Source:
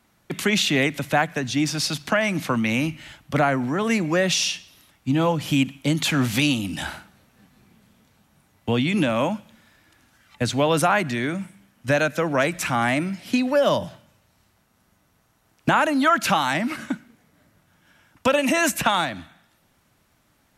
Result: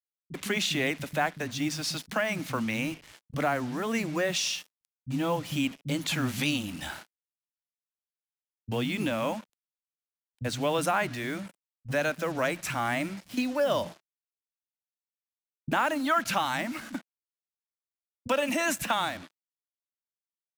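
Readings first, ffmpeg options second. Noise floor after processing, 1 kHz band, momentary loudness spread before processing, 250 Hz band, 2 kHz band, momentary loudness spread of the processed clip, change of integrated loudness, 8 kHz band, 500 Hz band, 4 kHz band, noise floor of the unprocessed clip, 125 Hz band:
under -85 dBFS, -7.0 dB, 12 LU, -8.5 dB, -7.0 dB, 13 LU, -7.5 dB, -6.5 dB, -7.0 dB, -7.0 dB, -64 dBFS, -9.0 dB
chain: -filter_complex "[0:a]acrusher=bits=5:mix=0:aa=0.5,acrossover=split=190[a][b];[b]adelay=40[c];[a][c]amix=inputs=2:normalize=0,volume=-7dB"

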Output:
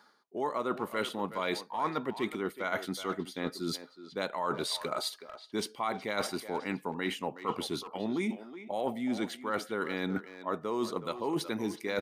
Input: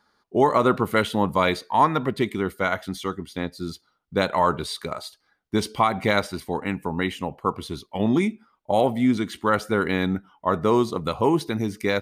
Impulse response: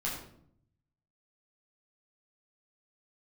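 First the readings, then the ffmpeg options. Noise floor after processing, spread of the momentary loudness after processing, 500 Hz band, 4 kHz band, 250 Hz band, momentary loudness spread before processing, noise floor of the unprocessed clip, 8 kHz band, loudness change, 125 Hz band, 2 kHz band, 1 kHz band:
-58 dBFS, 4 LU, -10.5 dB, -5.5 dB, -11.0 dB, 10 LU, -70 dBFS, -3.5 dB, -11.0 dB, -15.0 dB, -9.5 dB, -12.0 dB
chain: -filter_complex "[0:a]highpass=230,areverse,acompressor=threshold=-36dB:ratio=6,areverse,asplit=2[a][b];[b]adelay=370,highpass=300,lowpass=3.4k,asoftclip=type=hard:threshold=-32dB,volume=-11dB[c];[a][c]amix=inputs=2:normalize=0,volume=5dB"

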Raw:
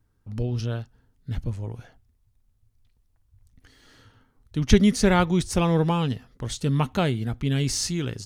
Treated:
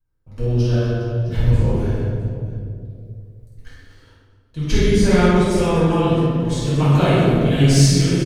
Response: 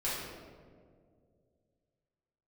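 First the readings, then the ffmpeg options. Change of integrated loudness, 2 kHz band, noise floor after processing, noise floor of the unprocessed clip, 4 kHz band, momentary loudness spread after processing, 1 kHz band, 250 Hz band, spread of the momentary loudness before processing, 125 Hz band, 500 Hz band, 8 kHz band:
+7.0 dB, +5.5 dB, -54 dBFS, -67 dBFS, +5.5 dB, 15 LU, +5.0 dB, +6.5 dB, 15 LU, +9.5 dB, +8.5 dB, +4.5 dB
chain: -filter_complex "[0:a]agate=range=-13dB:threshold=-52dB:ratio=16:detection=peak,aecho=1:1:50|125|237.5|406.2|659.4:0.631|0.398|0.251|0.158|0.1[a];[1:a]atrim=start_sample=2205[b];[a][b]afir=irnorm=-1:irlink=0,dynaudnorm=f=330:g=7:m=15dB,volume=-1dB"

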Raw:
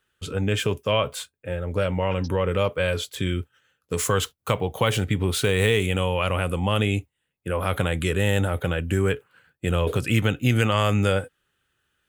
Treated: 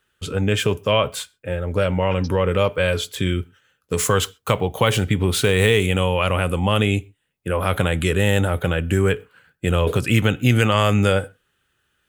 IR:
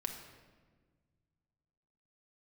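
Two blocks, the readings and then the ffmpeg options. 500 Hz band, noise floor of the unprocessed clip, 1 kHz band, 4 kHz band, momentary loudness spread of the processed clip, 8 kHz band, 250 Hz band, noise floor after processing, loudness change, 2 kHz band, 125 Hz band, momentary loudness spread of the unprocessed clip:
+4.0 dB, -79 dBFS, +4.0 dB, +4.0 dB, 9 LU, +4.0 dB, +4.0 dB, -71 dBFS, +4.0 dB, +4.0 dB, +3.5 dB, 9 LU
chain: -filter_complex "[0:a]asplit=2[a][b];[1:a]atrim=start_sample=2205,atrim=end_sample=6174[c];[b][c]afir=irnorm=-1:irlink=0,volume=-16dB[d];[a][d]amix=inputs=2:normalize=0,volume=3dB"

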